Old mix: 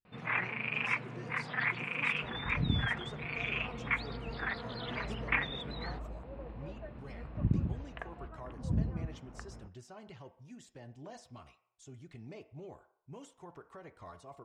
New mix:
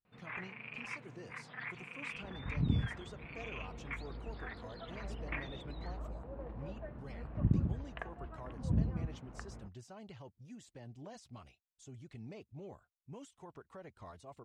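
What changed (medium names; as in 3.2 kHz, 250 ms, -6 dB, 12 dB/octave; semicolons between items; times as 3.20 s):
speech: send off; first sound -11.5 dB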